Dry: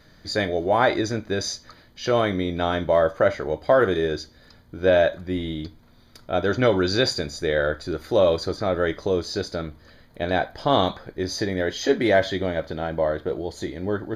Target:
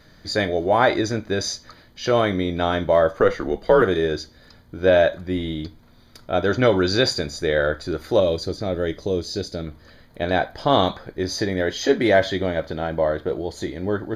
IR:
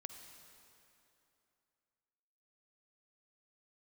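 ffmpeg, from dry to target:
-filter_complex "[0:a]asettb=1/sr,asplit=3[a][b][c];[a]atrim=end=3.204[d];[b]atrim=start=3.2:end=3.82,asetpts=PTS-STARTPTS,afade=t=in:d=0.004:c=qsin,afade=t=out:st=0.616:d=0.004:c=qsin,afreqshift=-99[e];[c]atrim=start=3.816[f];[d][e]acrossfade=d=0.004:c1=hsin:c2=qsin[g];[g][f]acrossfade=d=0.004:c1=qsin:c2=hsin,asettb=1/sr,asplit=3[h][i][j];[h]atrim=end=8.204[k];[i]atrim=start=8.2:end=9.67,asetpts=PTS-STARTPTS,afade=t=in:d=0.004:c=qsin,afade=t=out:st=1.466:d=0.004:c=qsin,equalizer=f=1.2k:w=0.78:g=-10.5[l];[j]atrim=start=9.666[m];[k][l]acrossfade=d=0.004:c1=hsin:c2=qsin[n];[n][m]acrossfade=d=0.004:c1=qsin:c2=hsin,volume=2dB"

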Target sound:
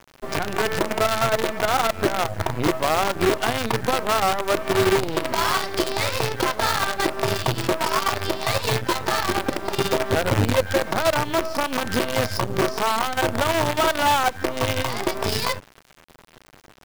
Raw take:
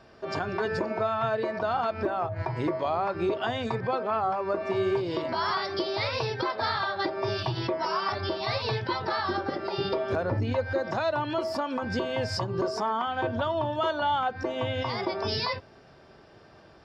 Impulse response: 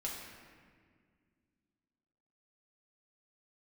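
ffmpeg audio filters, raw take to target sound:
-af "acrusher=bits=5:dc=4:mix=0:aa=0.000001,bass=f=250:g=1,treble=f=4k:g=-3,volume=6.5dB"

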